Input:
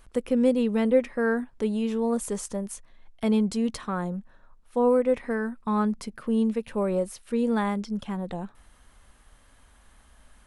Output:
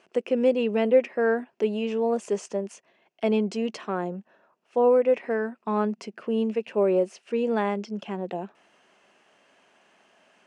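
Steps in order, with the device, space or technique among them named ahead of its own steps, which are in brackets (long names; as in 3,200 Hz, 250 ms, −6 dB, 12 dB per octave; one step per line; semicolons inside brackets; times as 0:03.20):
television speaker (loudspeaker in its box 190–6,600 Hz, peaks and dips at 250 Hz −5 dB, 380 Hz +8 dB, 660 Hz +7 dB, 1,200 Hz −3 dB, 2,700 Hz +9 dB, 3,800 Hz −7 dB)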